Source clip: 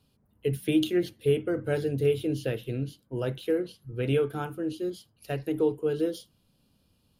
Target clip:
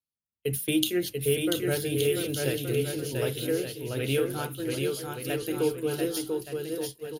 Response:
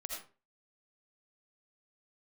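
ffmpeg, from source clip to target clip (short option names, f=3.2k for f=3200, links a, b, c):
-af "aecho=1:1:690|1173|1511|1748|1913:0.631|0.398|0.251|0.158|0.1,agate=range=-33dB:threshold=-33dB:ratio=3:detection=peak,crystalizer=i=4.5:c=0,volume=-2.5dB"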